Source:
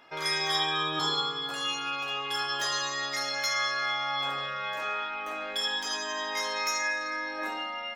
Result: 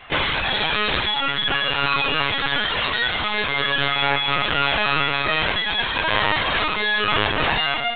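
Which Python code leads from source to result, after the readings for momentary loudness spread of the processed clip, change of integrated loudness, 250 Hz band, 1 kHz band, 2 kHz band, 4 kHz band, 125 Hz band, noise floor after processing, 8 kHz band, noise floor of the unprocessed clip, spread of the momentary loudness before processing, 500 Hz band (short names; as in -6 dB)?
2 LU, +9.5 dB, +12.0 dB, +9.0 dB, +11.0 dB, +9.0 dB, +17.0 dB, -24 dBFS, under -40 dB, -36 dBFS, 6 LU, +10.5 dB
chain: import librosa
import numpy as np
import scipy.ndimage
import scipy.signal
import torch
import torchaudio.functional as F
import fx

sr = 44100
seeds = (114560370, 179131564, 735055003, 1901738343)

p1 = fx.hum_notches(x, sr, base_hz=50, count=9)
p2 = fx.dereverb_blind(p1, sr, rt60_s=1.3)
p3 = fx.tilt_shelf(p2, sr, db=-3.0, hz=1200.0)
p4 = fx.over_compress(p3, sr, threshold_db=-36.0, ratio=-0.5)
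p5 = p3 + (p4 * 10.0 ** (3.0 / 20.0))
p6 = fx.echo_thinned(p5, sr, ms=80, feedback_pct=29, hz=160.0, wet_db=-7.5)
p7 = fx.cheby_harmonics(p6, sr, harmonics=(3, 4, 8), levels_db=(-42, -16, -9), full_scale_db=-13.0)
p8 = fx.lpc_vocoder(p7, sr, seeds[0], excitation='pitch_kept', order=16)
y = p8 * 10.0 ** (2.5 / 20.0)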